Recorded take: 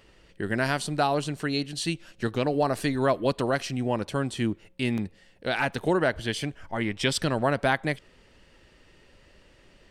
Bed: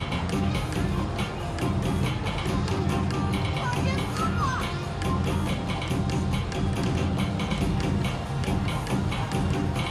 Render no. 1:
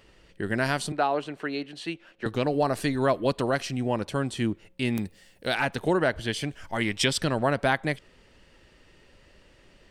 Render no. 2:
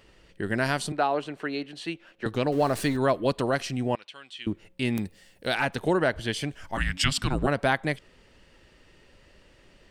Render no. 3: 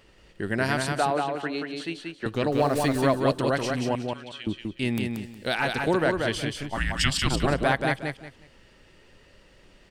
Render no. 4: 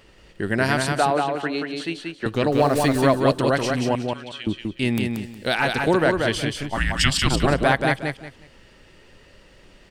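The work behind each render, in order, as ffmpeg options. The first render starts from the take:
-filter_complex "[0:a]asettb=1/sr,asplit=3[a][b][c];[a]atrim=end=0.924[d];[b]atrim=start=0.92:end=2.26,asetpts=PTS-STARTPTS,afade=t=in:d=0.004:c=qsin,afade=t=out:st=1.336:d=0.004:c=qsin,acrossover=split=260 3200:gain=0.178 1 0.158[e][f][g];[e][f][g]amix=inputs=3:normalize=0[h];[c]atrim=start=2.256[i];[d][h]acrossfade=d=0.004:c1=hsin:c2=qsin[j];[j][i]acrossfade=d=0.004:c1=qsin:c2=hsin,asettb=1/sr,asplit=3[k][l][m];[k]atrim=end=4.954[n];[l]atrim=start=4.95:end=5.55,asetpts=PTS-STARTPTS,afade=t=in:d=0.004:c=qsin,afade=t=out:st=0.596:d=0.004:c=qsin,aemphasis=mode=production:type=50fm[o];[m]atrim=start=5.546[p];[n][o]acrossfade=d=0.004:c1=hsin:c2=qsin[q];[q][p]acrossfade=d=0.004:c1=qsin:c2=hsin,asplit=3[r][s][t];[r]afade=t=out:st=6.5:d=0.02[u];[s]highshelf=f=2.7k:g=10.5,afade=t=in:st=6.5:d=0.02,afade=t=out:st=7.04:d=0.02[v];[t]afade=t=in:st=7.04:d=0.02[w];[u][v][w]amix=inputs=3:normalize=0"
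-filter_complex "[0:a]asettb=1/sr,asplit=3[a][b][c];[a]atrim=end=2.524[d];[b]atrim=start=2.52:end=2.97,asetpts=PTS-STARTPTS,afade=t=in:d=0.004:c=qsin,afade=t=out:st=0.446:d=0.004:c=qsin,aeval=exprs='val(0)+0.5*0.0141*sgn(val(0))':c=same[e];[c]atrim=start=2.966[f];[d][e]acrossfade=d=0.004:c1=hsin:c2=qsin[g];[g][f]acrossfade=d=0.004:c1=qsin:c2=hsin,asettb=1/sr,asplit=3[h][i][j];[h]atrim=end=3.954[k];[i]atrim=start=3.95:end=4.47,asetpts=PTS-STARTPTS,afade=t=in:d=0.004:c=qsin,afade=t=out:st=0.516:d=0.004:c=qsin,bandpass=f=3k:t=q:w=2.4[l];[j]atrim=start=4.466[m];[k][l]acrossfade=d=0.004:c1=hsin:c2=qsin[n];[n][m]acrossfade=d=0.004:c1=qsin:c2=hsin,asplit=3[o][p][q];[o]afade=t=out:st=6.76:d=0.02[r];[p]afreqshift=-280,afade=t=in:st=6.76:d=0.02,afade=t=out:st=7.46:d=0.02[s];[q]afade=t=in:st=7.46:d=0.02[t];[r][s][t]amix=inputs=3:normalize=0"
-af "aecho=1:1:182|364|546:0.631|0.158|0.0394"
-af "volume=4.5dB"

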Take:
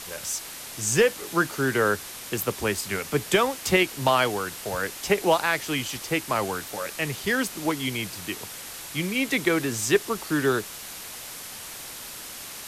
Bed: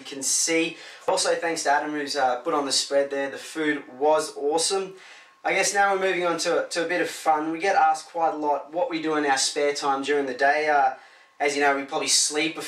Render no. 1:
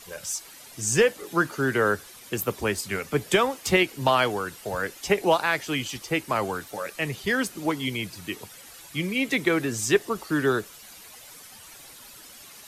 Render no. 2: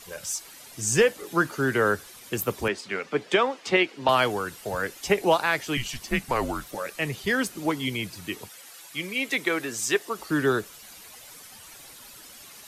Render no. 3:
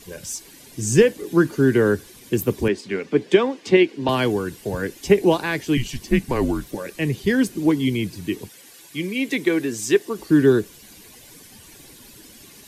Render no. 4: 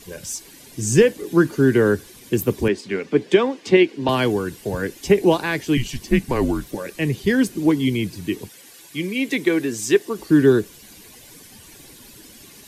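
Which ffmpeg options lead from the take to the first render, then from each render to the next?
-af "afftdn=nr=11:nf=-39"
-filter_complex "[0:a]asettb=1/sr,asplit=3[a][b][c];[a]atrim=end=2.684[d];[b]atrim=start=2.68:end=4.09,asetpts=PTS-STARTPTS,afade=t=in:d=0.004:c=qsin,afade=t=out:st=1.406:d=0.004:c=qsin,highpass=250,lowpass=4.3k[e];[c]atrim=start=4.086[f];[d][e]acrossfade=d=0.004:c1=hsin:c2=qsin[g];[g][f]acrossfade=d=0.004:c1=qsin:c2=hsin,asettb=1/sr,asplit=3[h][i][j];[h]atrim=end=5.774[k];[i]atrim=start=5.77:end=6.75,asetpts=PTS-STARTPTS,afade=t=in:d=0.004:c=qsin,afade=t=out:st=0.976:d=0.004:c=qsin,afreqshift=-130[l];[j]atrim=start=6.746[m];[k][l]acrossfade=d=0.004:c1=hsin:c2=qsin[n];[n][m]acrossfade=d=0.004:c1=qsin:c2=hsin,asettb=1/sr,asplit=3[o][p][q];[o]atrim=end=8.494[r];[p]atrim=start=8.49:end=10.19,asetpts=PTS-STARTPTS,afade=t=in:d=0.004:c=qsin,afade=t=out:st=1.696:d=0.004:c=qsin,highpass=f=530:p=1[s];[q]atrim=start=10.186[t];[r][s]acrossfade=d=0.004:c1=hsin:c2=qsin[u];[u][t]acrossfade=d=0.004:c1=qsin:c2=hsin"
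-af "lowshelf=f=480:t=q:w=1.5:g=8.5,bandreject=f=1.3k:w=6.5"
-af "volume=1dB,alimiter=limit=-3dB:level=0:latency=1"

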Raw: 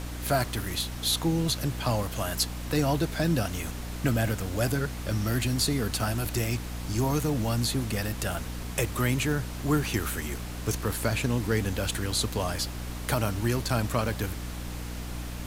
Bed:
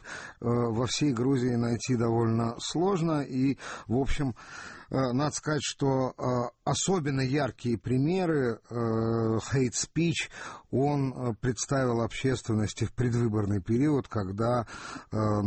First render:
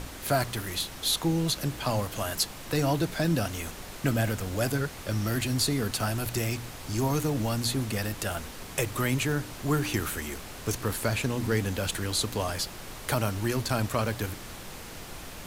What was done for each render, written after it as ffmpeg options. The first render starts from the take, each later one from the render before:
-af "bandreject=f=60:t=h:w=4,bandreject=f=120:t=h:w=4,bandreject=f=180:t=h:w=4,bandreject=f=240:t=h:w=4,bandreject=f=300:t=h:w=4"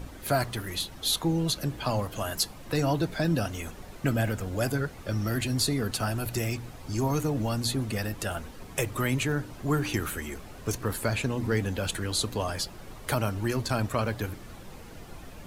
-af "afftdn=nr=10:nf=-42"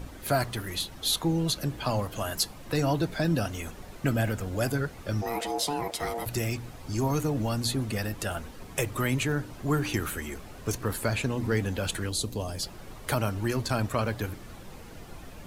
-filter_complex "[0:a]asplit=3[a][b][c];[a]afade=t=out:st=5.21:d=0.02[d];[b]aeval=exprs='val(0)*sin(2*PI*580*n/s)':c=same,afade=t=in:st=5.21:d=0.02,afade=t=out:st=6.25:d=0.02[e];[c]afade=t=in:st=6.25:d=0.02[f];[d][e][f]amix=inputs=3:normalize=0,asettb=1/sr,asplit=3[g][h][i];[g]atrim=end=12.094[j];[h]atrim=start=12.09:end=12.63,asetpts=PTS-STARTPTS,afade=t=in:d=0.004:c=qsin,afade=t=out:st=0.536:d=0.004:c=qsin,equalizer=f=1.5k:w=0.66:g=-11.5[k];[i]atrim=start=12.626[l];[j][k]acrossfade=d=0.004:c1=hsin:c2=qsin[m];[m][l]acrossfade=d=0.004:c1=qsin:c2=hsin"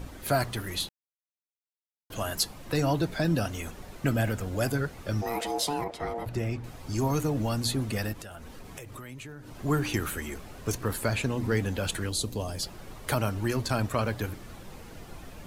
-filter_complex "[0:a]asettb=1/sr,asplit=3[a][b][c];[a]atrim=end=5.844[d];[b]atrim=start=5.84:end=6.64,asetpts=PTS-STARTPTS,afade=t=in:d=0.004:c=qsin,afade=t=out:st=0.796:d=0.004:c=qsin,lowpass=f=1.4k:p=1[e];[c]atrim=start=6.636[f];[d][e]acrossfade=d=0.004:c1=hsin:c2=qsin[g];[g][f]acrossfade=d=0.004:c1=qsin:c2=hsin,asettb=1/sr,asplit=3[h][i][j];[h]atrim=end=8.134[k];[i]atrim=start=8.13:end=9.6,asetpts=PTS-STARTPTS,afade=t=in:d=0.004:c=qsin,afade=t=out:st=1.466:d=0.004:c=qsin,acompressor=threshold=-39dB:ratio=10:attack=3.2:release=140:knee=1:detection=peak[l];[j]atrim=start=9.596[m];[k][l]acrossfade=d=0.004:c1=hsin:c2=qsin[n];[n][m]acrossfade=d=0.004:c1=qsin:c2=hsin,asplit=3[o][p][q];[o]atrim=end=0.89,asetpts=PTS-STARTPTS,afade=t=out:st=0.886:d=0.004:c=hsin[r];[p]atrim=start=0.89:end=2.1,asetpts=PTS-STARTPTS,volume=0[s];[q]atrim=start=2.1,asetpts=PTS-STARTPTS,afade=t=in:d=0.004:c=hsin[t];[r][s][t]concat=n=3:v=0:a=1"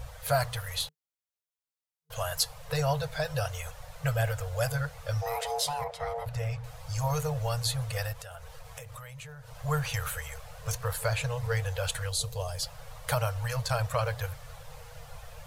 -af "afftfilt=real='re*(1-between(b*sr/4096,160,450))':imag='im*(1-between(b*sr/4096,160,450))':win_size=4096:overlap=0.75,equalizer=f=2.3k:t=o:w=0.77:g=-2"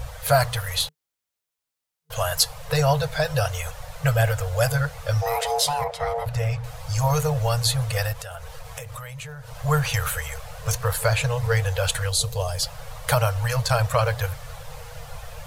-af "volume=8dB"

